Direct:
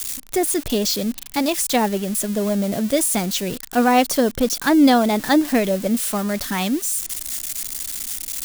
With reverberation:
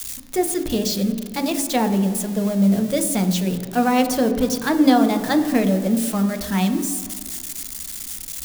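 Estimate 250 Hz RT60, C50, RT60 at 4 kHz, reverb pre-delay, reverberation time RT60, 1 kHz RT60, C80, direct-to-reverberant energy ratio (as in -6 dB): 1.7 s, 10.0 dB, 1.6 s, 3 ms, 2.1 s, 2.2 s, 11.5 dB, 6.0 dB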